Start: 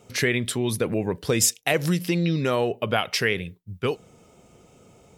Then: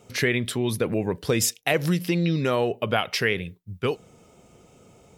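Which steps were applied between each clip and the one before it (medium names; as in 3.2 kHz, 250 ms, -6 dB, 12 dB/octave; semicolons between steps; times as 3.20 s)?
dynamic bell 7.9 kHz, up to -5 dB, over -43 dBFS, Q 1.1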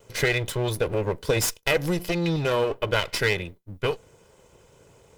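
comb filter that takes the minimum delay 2 ms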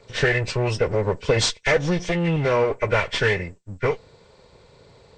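knee-point frequency compression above 1.4 kHz 1.5:1; peaking EQ 330 Hz -6 dB 0.21 oct; trim +4 dB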